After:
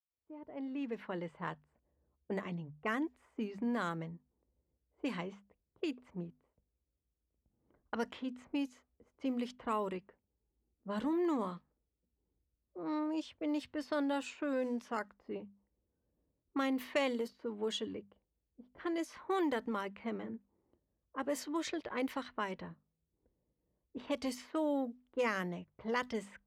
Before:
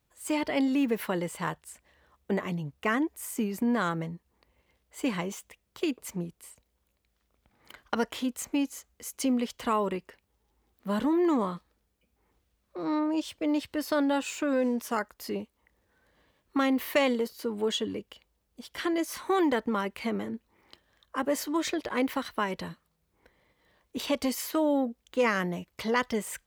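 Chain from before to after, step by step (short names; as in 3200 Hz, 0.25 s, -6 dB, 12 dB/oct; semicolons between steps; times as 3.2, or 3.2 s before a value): opening faded in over 1.43 s; notches 50/100/150/200/250 Hz; low-pass opened by the level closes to 340 Hz, open at -24 dBFS; gain -8 dB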